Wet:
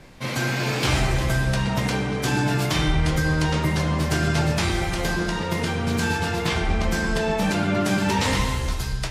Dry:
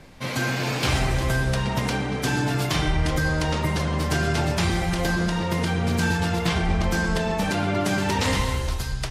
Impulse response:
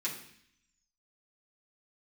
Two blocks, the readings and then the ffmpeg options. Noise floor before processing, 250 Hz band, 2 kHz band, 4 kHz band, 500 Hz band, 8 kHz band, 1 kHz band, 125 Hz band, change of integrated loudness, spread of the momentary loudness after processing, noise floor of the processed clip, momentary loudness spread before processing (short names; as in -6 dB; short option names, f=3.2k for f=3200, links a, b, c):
-29 dBFS, +1.0 dB, +1.0 dB, +1.0 dB, +1.0 dB, +1.0 dB, +0.5 dB, +1.0 dB, +1.0 dB, 4 LU, -27 dBFS, 3 LU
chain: -filter_complex "[0:a]asplit=2[a][b];[1:a]atrim=start_sample=2205,adelay=11[c];[b][c]afir=irnorm=-1:irlink=0,volume=-8.5dB[d];[a][d]amix=inputs=2:normalize=0"